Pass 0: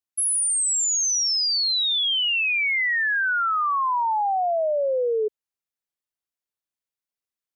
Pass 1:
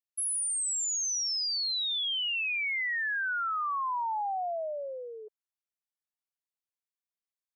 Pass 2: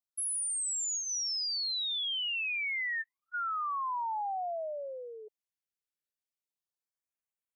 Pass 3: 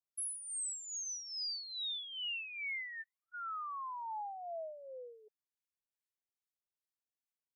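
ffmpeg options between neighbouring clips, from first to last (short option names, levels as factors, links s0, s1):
-af "highpass=f=630:w=0.5412,highpass=f=630:w=1.3066,volume=0.376"
-af "afftfilt=real='re*(1-between(b*sr/1024,850*pow(4800/850,0.5+0.5*sin(2*PI*0.3*pts/sr))/1.41,850*pow(4800/850,0.5+0.5*sin(2*PI*0.3*pts/sr))*1.41))':imag='im*(1-between(b*sr/1024,850*pow(4800/850,0.5+0.5*sin(2*PI*0.3*pts/sr))/1.41,850*pow(4800/850,0.5+0.5*sin(2*PI*0.3*pts/sr))*1.41))':win_size=1024:overlap=0.75,volume=0.75"
-filter_complex "[0:a]acrossover=split=1100[s0][s1];[s0]aeval=exprs='val(0)*(1-0.7/2+0.7/2*cos(2*PI*2.4*n/s))':c=same[s2];[s1]aeval=exprs='val(0)*(1-0.7/2-0.7/2*cos(2*PI*2.4*n/s))':c=same[s3];[s2][s3]amix=inputs=2:normalize=0,volume=0.596"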